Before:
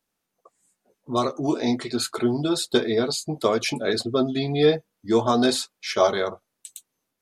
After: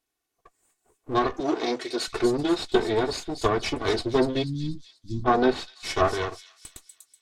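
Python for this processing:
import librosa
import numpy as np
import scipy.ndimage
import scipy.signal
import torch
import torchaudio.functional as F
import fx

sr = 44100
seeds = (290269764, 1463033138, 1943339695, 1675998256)

y = fx.lower_of_two(x, sr, delay_ms=2.7)
y = fx.highpass(y, sr, hz=280.0, slope=12, at=(1.4, 2.08))
y = fx.env_lowpass_down(y, sr, base_hz=2000.0, full_db=-17.0)
y = fx.cheby2_bandstop(y, sr, low_hz=450.0, high_hz=2700.0, order=4, stop_db=40, at=(4.42, 5.24), fade=0.02)
y = fx.rider(y, sr, range_db=10, speed_s=2.0)
y = fx.echo_wet_highpass(y, sr, ms=243, feedback_pct=45, hz=5200.0, wet_db=-4.0)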